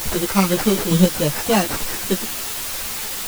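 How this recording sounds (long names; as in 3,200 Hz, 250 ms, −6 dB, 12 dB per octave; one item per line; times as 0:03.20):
aliases and images of a low sample rate 3,500 Hz, jitter 0%
chopped level 1.1 Hz, depth 65%, duty 15%
a quantiser's noise floor 6 bits, dither triangular
a shimmering, thickened sound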